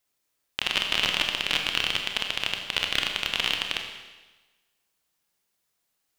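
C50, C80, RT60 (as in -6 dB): 5.0 dB, 7.0 dB, 1.2 s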